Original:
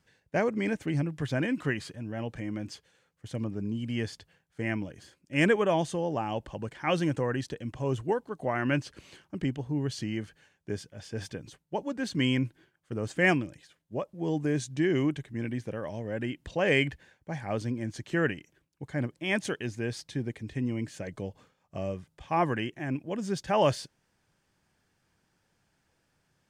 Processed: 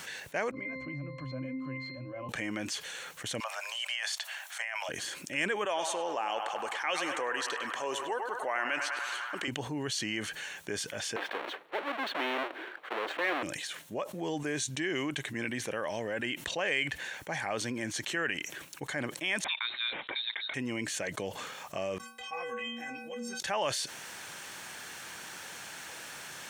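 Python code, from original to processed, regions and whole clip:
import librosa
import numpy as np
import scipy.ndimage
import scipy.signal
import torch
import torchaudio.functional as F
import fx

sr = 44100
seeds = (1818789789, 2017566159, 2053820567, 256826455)

y = fx.chain(x, sr, fx.lowpass(hz=8700.0, slope=12),
    fx.octave_resonator(note='C', decay_s=0.43),
    fx.band_squash(depth_pct=40), at=(0.51, 2.29))
y = fx.chain(y, sr, fx.steep_highpass(hz=600.0, slope=72),
    fx.over_compress(threshold_db=-46.0, ratio=-1.0), at=(3.4, 4.89))
y = fx.chain(y, sr, fx.highpass(hz=410.0, slope=12),
    fx.echo_banded(ms=101, feedback_pct=75, hz=1200.0, wet_db=-8.5), at=(5.65, 9.48))
y = fx.chain(y, sr, fx.halfwave_hold(),
    fx.highpass(hz=320.0, slope=24),
    fx.air_absorb(metres=480.0), at=(11.16, 13.43))
y = fx.chain(y, sr, fx.highpass(hz=540.0, slope=12),
    fx.freq_invert(carrier_hz=4000), at=(19.44, 20.54))
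y = fx.chain(y, sr, fx.peak_eq(hz=540.0, db=5.5, octaves=0.21),
    fx.stiff_resonator(f0_hz=230.0, decay_s=0.77, stiffness=0.03), at=(21.98, 23.4))
y = fx.highpass(y, sr, hz=1400.0, slope=6)
y = fx.notch(y, sr, hz=4900.0, q=8.4)
y = fx.env_flatten(y, sr, amount_pct=70)
y = y * 10.0 ** (-2.5 / 20.0)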